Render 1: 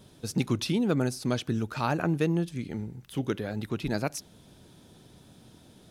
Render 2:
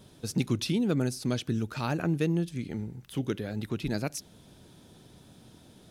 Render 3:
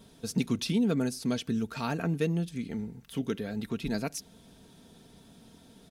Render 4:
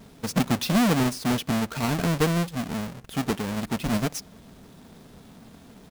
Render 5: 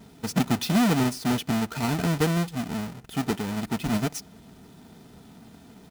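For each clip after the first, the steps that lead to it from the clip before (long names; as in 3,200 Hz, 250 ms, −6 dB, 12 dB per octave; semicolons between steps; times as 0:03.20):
dynamic equaliser 950 Hz, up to −6 dB, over −42 dBFS, Q 0.78
comb filter 4.4 ms, depth 48%; level −1.5 dB
each half-wave held at its own peak; level +1.5 dB
notch comb filter 550 Hz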